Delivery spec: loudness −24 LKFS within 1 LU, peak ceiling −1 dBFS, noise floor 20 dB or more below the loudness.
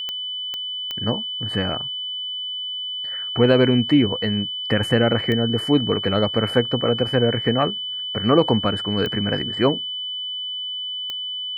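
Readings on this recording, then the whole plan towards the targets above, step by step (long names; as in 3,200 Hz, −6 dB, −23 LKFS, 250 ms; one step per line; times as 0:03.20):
number of clicks 6; interfering tone 3,000 Hz; level of the tone −26 dBFS; integrated loudness −21.5 LKFS; sample peak −3.0 dBFS; target loudness −24.0 LKFS
→ click removal
notch filter 3,000 Hz, Q 30
level −2.5 dB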